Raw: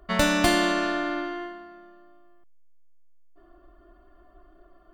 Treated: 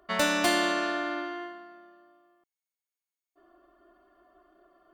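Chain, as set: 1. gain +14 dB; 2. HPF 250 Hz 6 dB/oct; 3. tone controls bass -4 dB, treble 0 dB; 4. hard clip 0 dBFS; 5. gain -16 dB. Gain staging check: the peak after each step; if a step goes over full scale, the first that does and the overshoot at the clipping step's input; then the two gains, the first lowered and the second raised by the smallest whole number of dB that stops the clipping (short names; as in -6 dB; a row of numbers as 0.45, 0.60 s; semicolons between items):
+7.5, +7.5, +7.5, 0.0, -16.0 dBFS; step 1, 7.5 dB; step 1 +6 dB, step 5 -8 dB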